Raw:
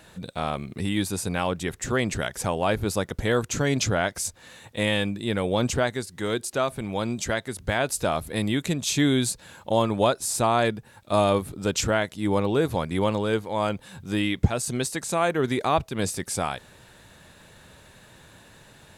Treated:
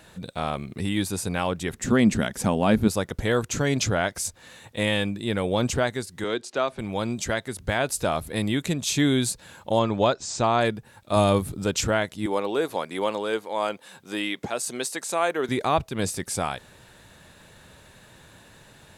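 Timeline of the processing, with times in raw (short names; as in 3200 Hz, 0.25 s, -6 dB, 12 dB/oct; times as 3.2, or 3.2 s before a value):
1.73–2.88 bell 220 Hz +13 dB 0.72 oct
6.24–6.79 three-band isolator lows -13 dB, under 210 Hz, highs -23 dB, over 6800 Hz
9.79–10.61 steep low-pass 7300 Hz 48 dB/oct
11.16–11.64 tone controls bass +5 dB, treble +4 dB
12.26–15.49 HPF 350 Hz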